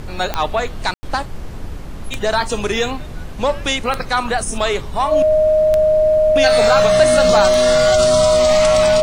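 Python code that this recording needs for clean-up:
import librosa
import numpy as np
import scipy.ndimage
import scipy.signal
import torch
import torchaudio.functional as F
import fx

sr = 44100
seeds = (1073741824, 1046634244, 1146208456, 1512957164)

y = fx.fix_declick_ar(x, sr, threshold=10.0)
y = fx.notch(y, sr, hz=620.0, q=30.0)
y = fx.fix_ambience(y, sr, seeds[0], print_start_s=1.53, print_end_s=2.03, start_s=0.94, end_s=1.03)
y = fx.noise_reduce(y, sr, print_start_s=1.49, print_end_s=1.99, reduce_db=30.0)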